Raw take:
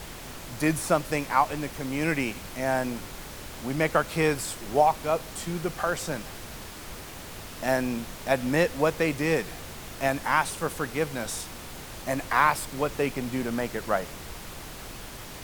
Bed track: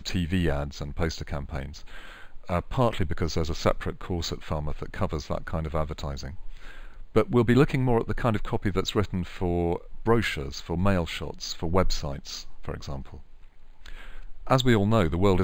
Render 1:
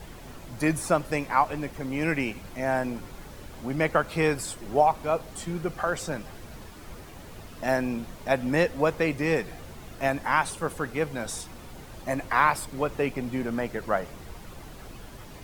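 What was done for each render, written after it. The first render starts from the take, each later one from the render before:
broadband denoise 9 dB, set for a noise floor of −41 dBFS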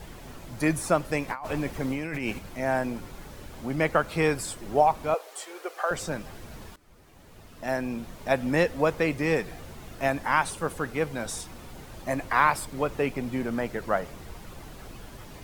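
0:01.28–0:02.39: compressor whose output falls as the input rises −31 dBFS
0:05.14–0:05.91: Butterworth high-pass 410 Hz
0:06.76–0:08.33: fade in, from −19.5 dB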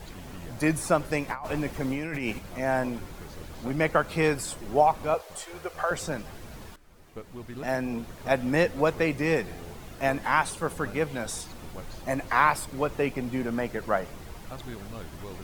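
mix in bed track −20 dB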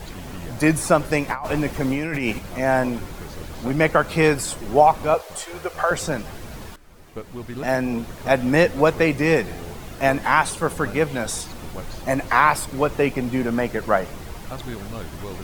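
level +7 dB
brickwall limiter −3 dBFS, peak gain reduction 3 dB

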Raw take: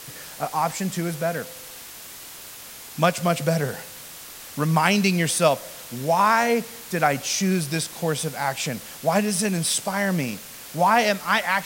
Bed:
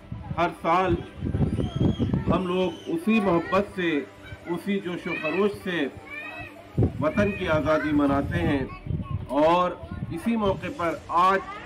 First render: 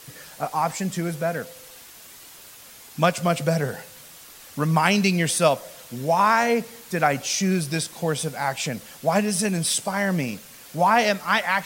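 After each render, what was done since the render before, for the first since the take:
broadband denoise 6 dB, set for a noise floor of −41 dBFS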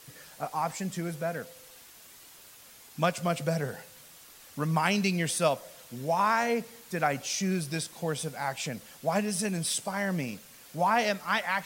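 level −7 dB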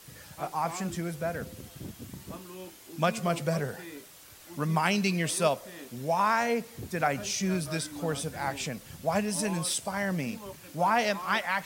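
mix in bed −19.5 dB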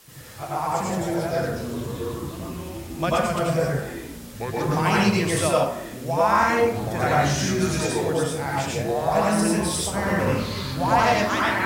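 dense smooth reverb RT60 0.66 s, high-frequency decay 0.55×, pre-delay 75 ms, DRR −5 dB
delay with pitch and tempo change per echo 126 ms, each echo −6 semitones, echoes 3, each echo −6 dB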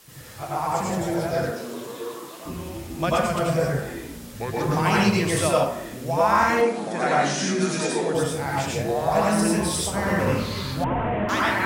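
0:01.50–0:02.45: high-pass filter 250 Hz → 550 Hz
0:06.61–0:08.15: linear-phase brick-wall band-pass 150–11,000 Hz
0:10.84–0:11.29: linear delta modulator 16 kbit/s, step −35 dBFS

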